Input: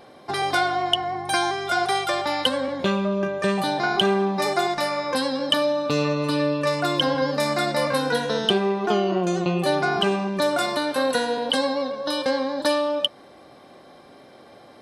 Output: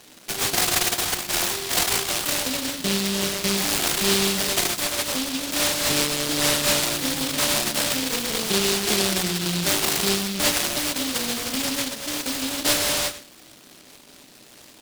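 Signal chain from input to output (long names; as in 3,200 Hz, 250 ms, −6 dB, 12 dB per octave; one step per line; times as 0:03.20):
running median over 25 samples
high-pass filter 220 Hz 12 dB per octave
high-frequency loss of the air 360 metres
notch filter 540 Hz, Q 12
comb filter 1.2 ms, depth 42%
on a send at −5 dB: convolution reverb RT60 0.55 s, pre-delay 7 ms
on the sum: short delay modulated by noise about 3,700 Hz, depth 0.4 ms
level +2 dB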